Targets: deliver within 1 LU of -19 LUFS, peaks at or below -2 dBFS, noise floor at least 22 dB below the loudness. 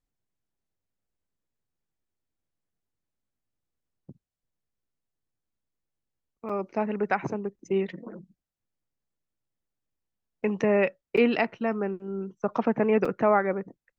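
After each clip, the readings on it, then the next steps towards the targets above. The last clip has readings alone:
dropouts 3; longest dropout 5.0 ms; loudness -27.0 LUFS; peak -9.0 dBFS; loudness target -19.0 LUFS
-> interpolate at 6.49/11.17/13.05, 5 ms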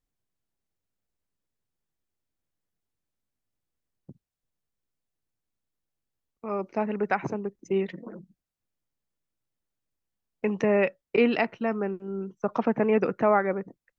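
dropouts 0; loudness -27.0 LUFS; peak -9.0 dBFS; loudness target -19.0 LUFS
-> gain +8 dB; limiter -2 dBFS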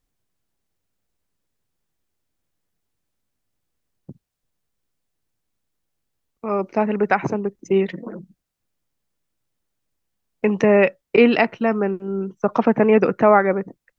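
loudness -19.0 LUFS; peak -2.0 dBFS; noise floor -78 dBFS

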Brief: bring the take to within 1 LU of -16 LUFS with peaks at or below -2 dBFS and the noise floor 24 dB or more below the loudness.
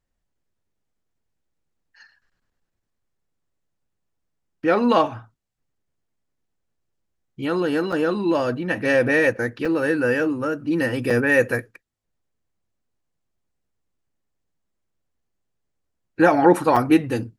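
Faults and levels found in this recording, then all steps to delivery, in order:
dropouts 4; longest dropout 5.1 ms; loudness -20.5 LUFS; peak -3.5 dBFS; loudness target -16.0 LUFS
-> interpolate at 7.92/9.65/11.1/16.76, 5.1 ms; gain +4.5 dB; limiter -2 dBFS

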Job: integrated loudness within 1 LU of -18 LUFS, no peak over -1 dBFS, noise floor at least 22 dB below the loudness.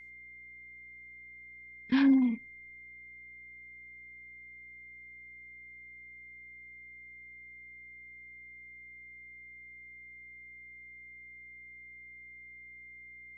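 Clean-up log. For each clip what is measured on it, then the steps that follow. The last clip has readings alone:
hum 60 Hz; harmonics up to 420 Hz; hum level -66 dBFS; steady tone 2100 Hz; tone level -48 dBFS; loudness -38.5 LUFS; peak -16.5 dBFS; loudness target -18.0 LUFS
-> de-hum 60 Hz, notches 7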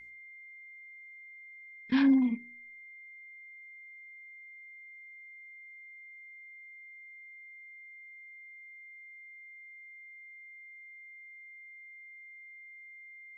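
hum none; steady tone 2100 Hz; tone level -48 dBFS
-> notch 2100 Hz, Q 30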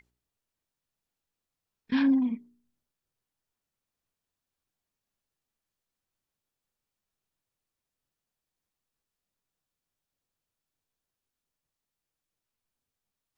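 steady tone none; loudness -26.5 LUFS; peak -16.5 dBFS; loudness target -18.0 LUFS
-> gain +8.5 dB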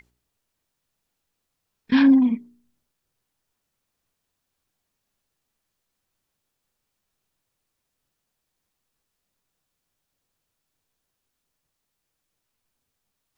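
loudness -18.0 LUFS; peak -8.0 dBFS; noise floor -80 dBFS

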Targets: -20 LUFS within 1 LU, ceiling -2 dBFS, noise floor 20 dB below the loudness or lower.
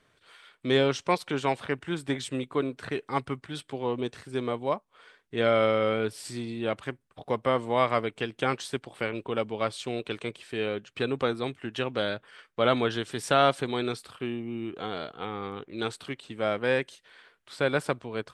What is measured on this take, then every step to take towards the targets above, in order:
loudness -29.5 LUFS; peak -8.0 dBFS; loudness target -20.0 LUFS
-> gain +9.5 dB; limiter -2 dBFS

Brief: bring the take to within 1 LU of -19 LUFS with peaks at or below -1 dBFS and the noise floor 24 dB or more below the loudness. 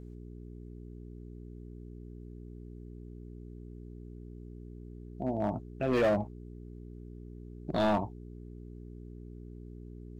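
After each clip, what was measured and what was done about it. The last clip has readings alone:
clipped 0.8%; flat tops at -22.5 dBFS; hum 60 Hz; harmonics up to 420 Hz; hum level -43 dBFS; loudness -31.5 LUFS; peak -22.5 dBFS; loudness target -19.0 LUFS
-> clip repair -22.5 dBFS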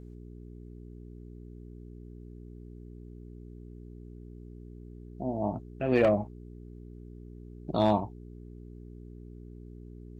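clipped 0.0%; hum 60 Hz; harmonics up to 420 Hz; hum level -43 dBFS
-> de-hum 60 Hz, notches 7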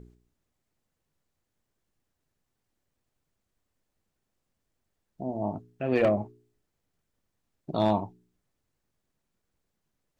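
hum none; loudness -29.0 LUFS; peak -12.5 dBFS; loudness target -19.0 LUFS
-> gain +10 dB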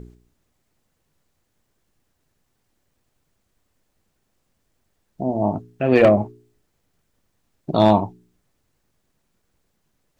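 loudness -19.0 LUFS; peak -2.5 dBFS; noise floor -72 dBFS

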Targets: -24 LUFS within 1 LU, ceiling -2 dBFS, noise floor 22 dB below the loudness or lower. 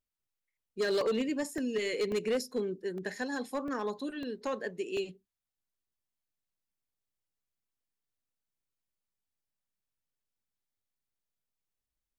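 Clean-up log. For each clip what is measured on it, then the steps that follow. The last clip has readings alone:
clipped 0.7%; flat tops at -25.0 dBFS; dropouts 7; longest dropout 1.9 ms; loudness -34.0 LUFS; peak -25.0 dBFS; loudness target -24.0 LUFS
-> clip repair -25 dBFS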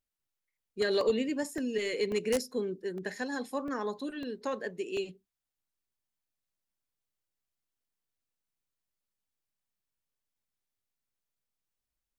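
clipped 0.0%; dropouts 7; longest dropout 1.9 ms
-> interpolate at 1.01/1.58/2.12/2.98/3.68/4.23/4.97, 1.9 ms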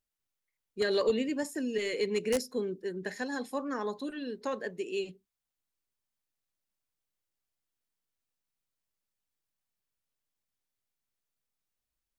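dropouts 0; loudness -33.5 LUFS; peak -16.0 dBFS; loudness target -24.0 LUFS
-> gain +9.5 dB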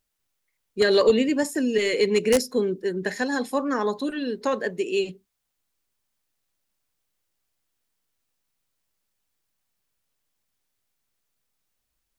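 loudness -23.5 LUFS; peak -6.5 dBFS; noise floor -79 dBFS

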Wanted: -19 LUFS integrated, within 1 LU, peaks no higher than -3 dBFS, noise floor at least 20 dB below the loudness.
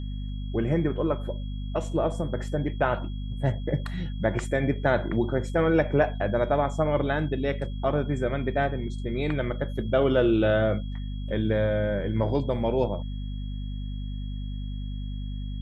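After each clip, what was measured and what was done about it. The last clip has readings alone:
hum 50 Hz; harmonics up to 250 Hz; hum level -30 dBFS; steady tone 3300 Hz; tone level -51 dBFS; loudness -27.5 LUFS; peak -9.5 dBFS; loudness target -19.0 LUFS
-> notches 50/100/150/200/250 Hz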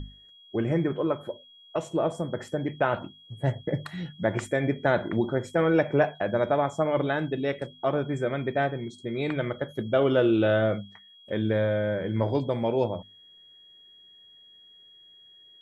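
hum none; steady tone 3300 Hz; tone level -51 dBFS
-> notch 3300 Hz, Q 30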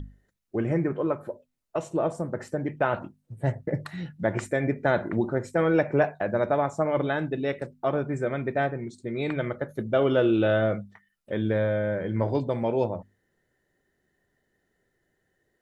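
steady tone none; loudness -27.0 LUFS; peak -10.0 dBFS; loudness target -19.0 LUFS
-> gain +8 dB; limiter -3 dBFS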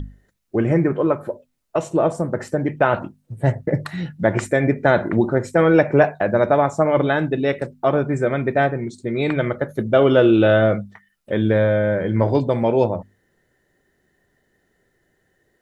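loudness -19.5 LUFS; peak -3.0 dBFS; noise floor -67 dBFS

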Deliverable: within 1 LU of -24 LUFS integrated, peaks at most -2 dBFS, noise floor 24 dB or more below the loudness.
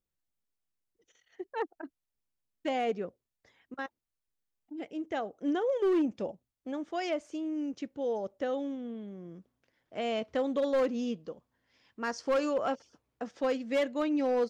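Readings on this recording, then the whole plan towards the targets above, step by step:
clipped 1.0%; flat tops at -23.0 dBFS; loudness -33.0 LUFS; peak -23.0 dBFS; loudness target -24.0 LUFS
-> clip repair -23 dBFS; gain +9 dB

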